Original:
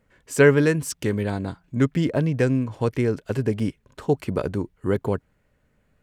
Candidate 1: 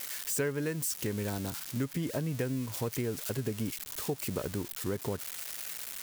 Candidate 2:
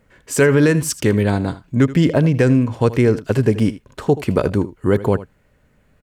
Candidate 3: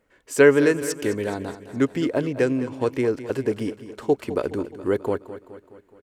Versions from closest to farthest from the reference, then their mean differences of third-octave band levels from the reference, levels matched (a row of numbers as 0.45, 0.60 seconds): 2, 3, 1; 2.5, 4.0, 10.0 decibels